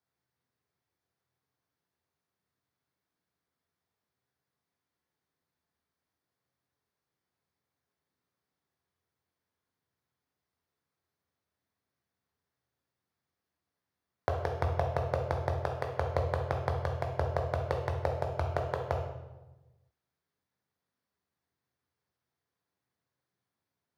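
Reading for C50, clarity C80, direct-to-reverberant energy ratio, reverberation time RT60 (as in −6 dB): 5.0 dB, 7.5 dB, 1.0 dB, 1.1 s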